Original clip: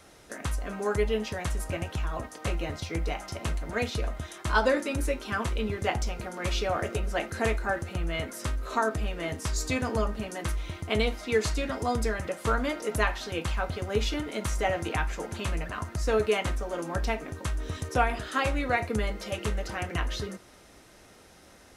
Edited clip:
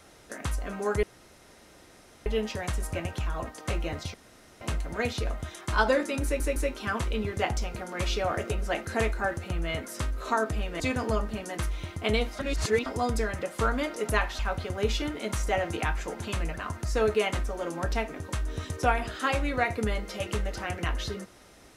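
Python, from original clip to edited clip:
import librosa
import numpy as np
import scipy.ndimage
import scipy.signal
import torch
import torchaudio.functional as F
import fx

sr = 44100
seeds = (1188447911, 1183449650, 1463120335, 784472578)

y = fx.edit(x, sr, fx.insert_room_tone(at_s=1.03, length_s=1.23),
    fx.room_tone_fill(start_s=2.91, length_s=0.47),
    fx.stutter(start_s=5.01, slice_s=0.16, count=3),
    fx.cut(start_s=9.25, length_s=0.41),
    fx.reverse_span(start_s=11.25, length_s=0.47),
    fx.cut(start_s=13.25, length_s=0.26), tone=tone)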